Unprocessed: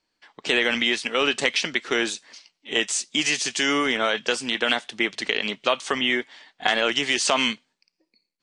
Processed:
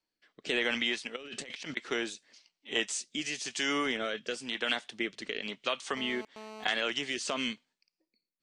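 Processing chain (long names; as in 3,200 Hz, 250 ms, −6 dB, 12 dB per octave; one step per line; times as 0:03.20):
rotating-speaker cabinet horn 1 Hz
0:01.16–0:01.77: compressor whose output falls as the input rises −36 dBFS, ratio −1
0:05.97–0:06.64: phone interference −38 dBFS
level −7.5 dB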